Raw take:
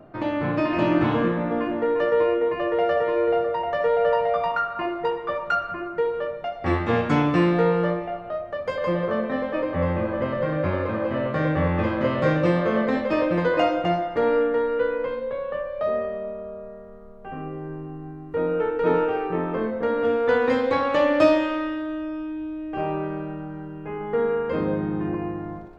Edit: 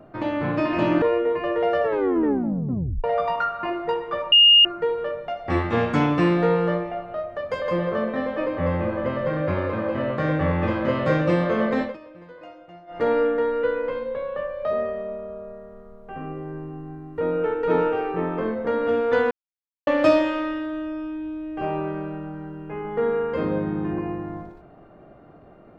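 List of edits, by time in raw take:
0:01.02–0:02.18: remove
0:02.99: tape stop 1.21 s
0:05.48–0:05.81: beep over 2,840 Hz −9.5 dBFS
0:12.98–0:14.18: duck −22.5 dB, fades 0.15 s
0:20.47–0:21.03: silence

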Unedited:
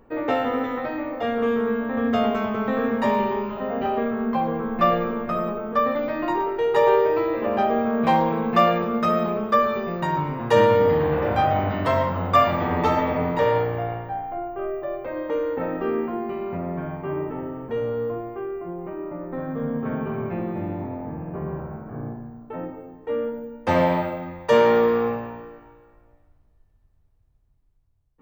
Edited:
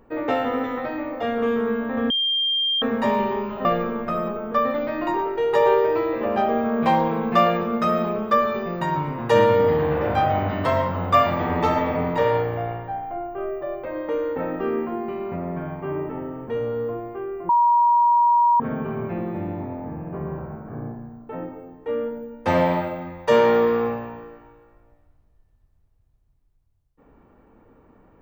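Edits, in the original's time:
0:02.10–0:02.82: beep over 3,190 Hz −19 dBFS
0:03.65–0:04.86: remove
0:18.70–0:19.81: beep over 953 Hz −13.5 dBFS

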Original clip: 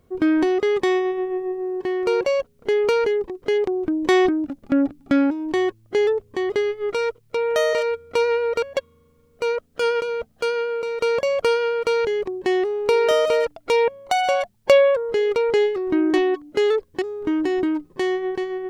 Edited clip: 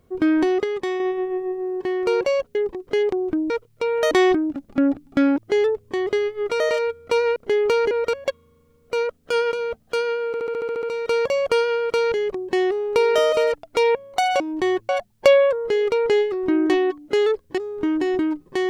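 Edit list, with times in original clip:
0:00.64–0:01.00: clip gain −5.5 dB
0:02.55–0:03.10: move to 0:08.40
0:05.32–0:05.81: move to 0:14.33
0:07.03–0:07.64: move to 0:04.05
0:10.76: stutter 0.07 s, 9 plays

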